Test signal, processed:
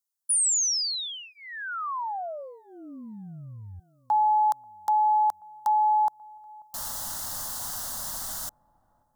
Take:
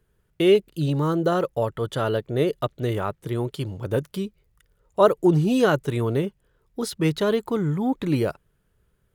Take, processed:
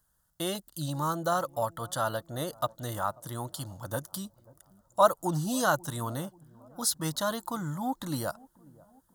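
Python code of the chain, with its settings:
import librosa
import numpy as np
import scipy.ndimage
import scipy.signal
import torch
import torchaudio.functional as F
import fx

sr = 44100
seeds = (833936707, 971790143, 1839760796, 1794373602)

p1 = fx.bass_treble(x, sr, bass_db=-10, treble_db=9)
p2 = fx.fixed_phaser(p1, sr, hz=1000.0, stages=4)
y = p2 + fx.echo_wet_lowpass(p2, sr, ms=537, feedback_pct=51, hz=790.0, wet_db=-22.5, dry=0)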